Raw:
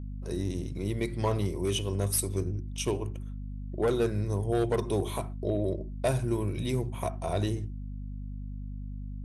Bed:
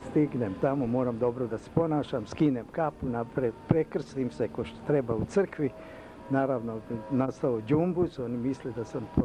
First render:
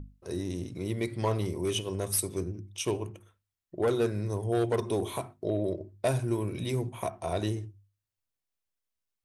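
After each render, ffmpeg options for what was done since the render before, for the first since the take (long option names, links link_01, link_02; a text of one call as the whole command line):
ffmpeg -i in.wav -af "bandreject=frequency=50:width_type=h:width=6,bandreject=frequency=100:width_type=h:width=6,bandreject=frequency=150:width_type=h:width=6,bandreject=frequency=200:width_type=h:width=6,bandreject=frequency=250:width_type=h:width=6" out.wav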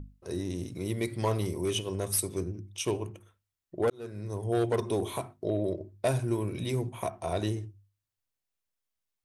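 ffmpeg -i in.wav -filter_complex "[0:a]asettb=1/sr,asplit=3[link_01][link_02][link_03];[link_01]atrim=end=0.594[link_04];[link_02]atrim=start=0.59:end=1.65,asetpts=PTS-STARTPTS,afade=type=in:duration=0.004:curve=qsin,afade=type=out:start_time=1.056:duration=0.004:curve=qsin,highshelf=frequency=8400:gain=9[link_05];[link_03]atrim=start=1.646[link_06];[link_04][link_05]acrossfade=duration=0.004:curve1=hsin:curve2=qsin[link_07];[link_07][link_06]acrossfade=duration=0.004:curve1=qsin:curve2=hsin,asplit=2[link_08][link_09];[link_08]atrim=end=3.9,asetpts=PTS-STARTPTS,afade=type=out:start_time=3.896:duration=0.004:curve=hsin[link_10];[link_09]atrim=start=3.9,asetpts=PTS-STARTPTS,afade=type=in:duration=0.64[link_11];[link_10][link_11]concat=n=2:v=0:a=1" out.wav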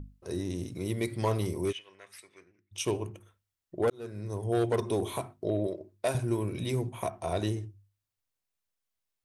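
ffmpeg -i in.wav -filter_complex "[0:a]asplit=3[link_01][link_02][link_03];[link_01]afade=type=out:start_time=1.71:duration=0.02[link_04];[link_02]bandpass=frequency=2000:width_type=q:width=3.1,afade=type=in:start_time=1.71:duration=0.02,afade=type=out:start_time=2.71:duration=0.02[link_05];[link_03]afade=type=in:start_time=2.71:duration=0.02[link_06];[link_04][link_05][link_06]amix=inputs=3:normalize=0,asettb=1/sr,asplit=3[link_07][link_08][link_09];[link_07]atrim=end=5.674[link_10];[link_08]atrim=start=5.67:end=6.15,asetpts=PTS-STARTPTS,afade=type=in:duration=0.004:curve=qsin,afade=type=out:start_time=0.476:duration=0.004:curve=qsin,highpass=frequency=400:poles=1[link_11];[link_09]atrim=start=6.146[link_12];[link_10][link_11]acrossfade=duration=0.004:curve1=hsin:curve2=qsin[link_13];[link_13][link_12]acrossfade=duration=0.004:curve1=qsin:curve2=hsin" out.wav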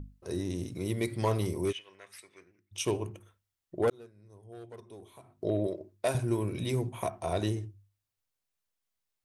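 ffmpeg -i in.wav -filter_complex "[0:a]asplit=3[link_01][link_02][link_03];[link_01]atrim=end=4.15,asetpts=PTS-STARTPTS,afade=type=out:start_time=3.92:duration=0.23:curve=qua:silence=0.105925[link_04];[link_02]atrim=start=4.15:end=5.18,asetpts=PTS-STARTPTS,volume=-19.5dB[link_05];[link_03]atrim=start=5.18,asetpts=PTS-STARTPTS,afade=type=in:duration=0.23:curve=qua:silence=0.105925[link_06];[link_04][link_05][link_06]concat=n=3:v=0:a=1" out.wav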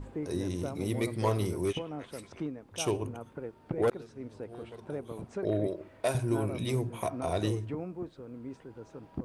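ffmpeg -i in.wav -i bed.wav -filter_complex "[1:a]volume=-12dB[link_01];[0:a][link_01]amix=inputs=2:normalize=0" out.wav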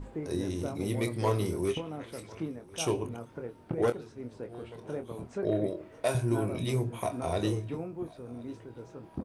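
ffmpeg -i in.wav -filter_complex "[0:a]asplit=2[link_01][link_02];[link_02]adelay=25,volume=-8dB[link_03];[link_01][link_03]amix=inputs=2:normalize=0,aecho=1:1:1048|2096|3144:0.0708|0.029|0.0119" out.wav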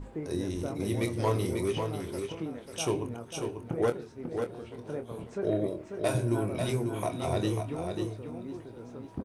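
ffmpeg -i in.wav -af "aecho=1:1:543:0.501" out.wav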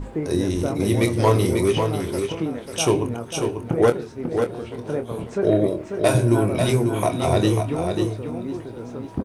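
ffmpeg -i in.wav -af "volume=10.5dB" out.wav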